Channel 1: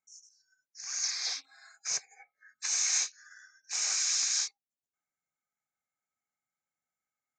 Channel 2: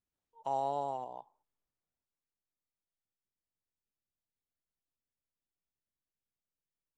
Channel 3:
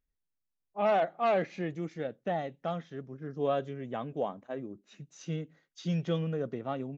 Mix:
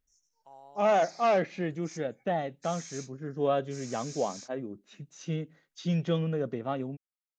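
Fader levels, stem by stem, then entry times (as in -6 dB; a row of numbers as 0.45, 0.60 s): -17.0, -18.5, +2.5 dB; 0.00, 0.00, 0.00 s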